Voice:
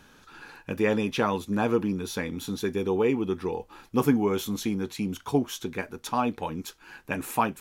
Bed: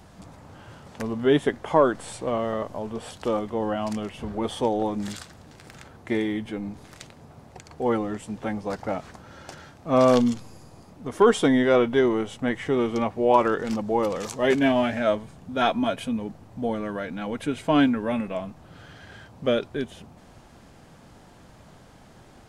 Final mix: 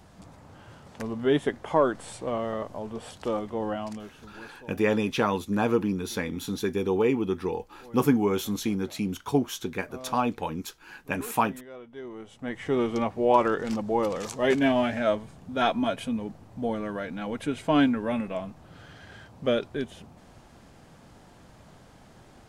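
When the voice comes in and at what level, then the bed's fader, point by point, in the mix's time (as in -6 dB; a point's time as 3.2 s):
4.00 s, +0.5 dB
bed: 3.73 s -3.5 dB
4.69 s -25 dB
11.82 s -25 dB
12.73 s -2 dB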